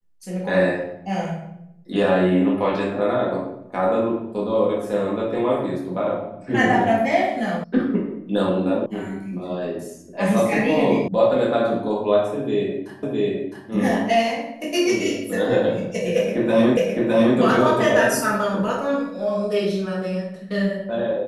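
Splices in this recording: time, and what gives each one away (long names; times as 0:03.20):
0:07.64: cut off before it has died away
0:08.86: cut off before it has died away
0:11.08: cut off before it has died away
0:13.03: the same again, the last 0.66 s
0:16.77: the same again, the last 0.61 s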